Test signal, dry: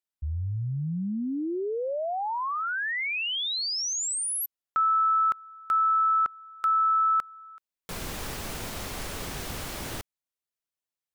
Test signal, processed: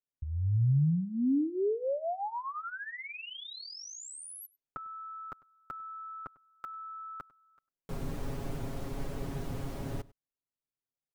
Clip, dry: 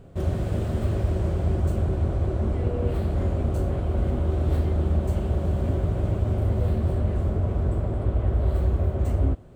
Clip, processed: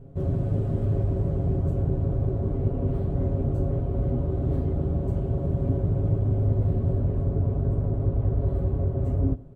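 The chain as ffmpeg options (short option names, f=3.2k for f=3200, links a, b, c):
-filter_complex "[0:a]tiltshelf=f=910:g=9.5,aecho=1:1:7.3:0.72,asplit=2[a][b];[b]adelay=99.13,volume=-22dB,highshelf=f=4k:g=-2.23[c];[a][c]amix=inputs=2:normalize=0,volume=-8.5dB"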